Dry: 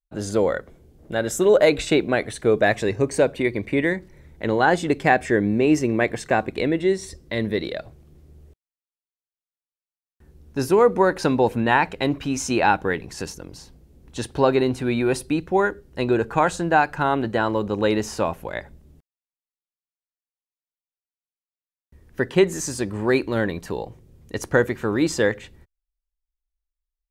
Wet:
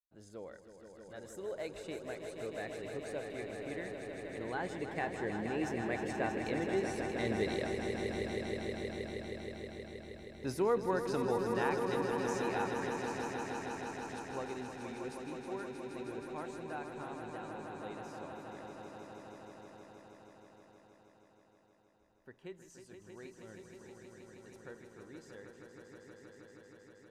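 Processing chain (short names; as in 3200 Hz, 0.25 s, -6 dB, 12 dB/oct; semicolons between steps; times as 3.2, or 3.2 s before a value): Doppler pass-by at 8.67, 6 m/s, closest 3.3 m; swelling echo 0.158 s, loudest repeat 5, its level -8 dB; gain -3.5 dB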